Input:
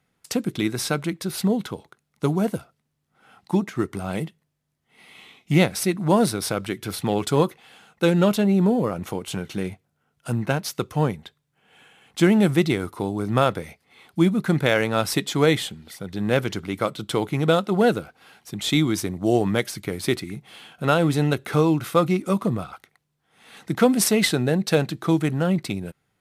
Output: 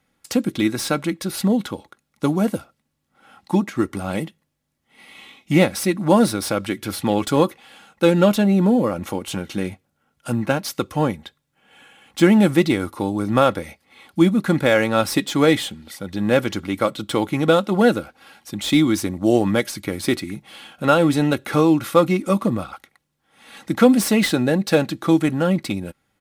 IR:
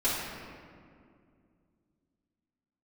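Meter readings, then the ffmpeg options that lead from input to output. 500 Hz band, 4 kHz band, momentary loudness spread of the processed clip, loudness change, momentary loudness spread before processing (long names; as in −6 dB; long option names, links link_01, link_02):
+3.0 dB, +1.5 dB, 12 LU, +3.0 dB, 12 LU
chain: -filter_complex "[0:a]aecho=1:1:3.6:0.43,acrossover=split=2000[link_01][link_02];[link_02]asoftclip=type=tanh:threshold=-24.5dB[link_03];[link_01][link_03]amix=inputs=2:normalize=0,volume=3dB"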